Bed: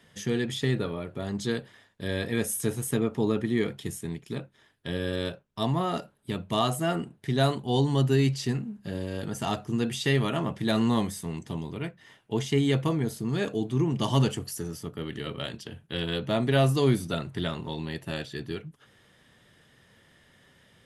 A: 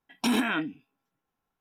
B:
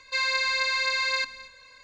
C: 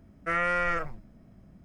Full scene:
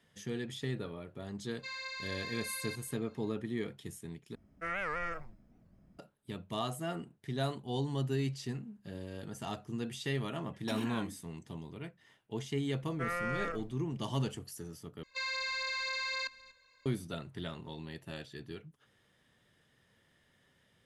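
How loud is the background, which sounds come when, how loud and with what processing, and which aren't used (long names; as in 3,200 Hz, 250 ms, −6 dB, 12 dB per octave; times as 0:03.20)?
bed −10.5 dB
0:01.51: mix in B −16.5 dB
0:04.35: overwrite with C −9.5 dB + wow of a warped record 78 rpm, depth 250 cents
0:10.44: mix in A −15.5 dB
0:12.73: mix in C −10.5 dB + hollow resonant body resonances 490/1,200 Hz, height 6 dB
0:15.03: overwrite with B −6.5 dB + output level in coarse steps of 10 dB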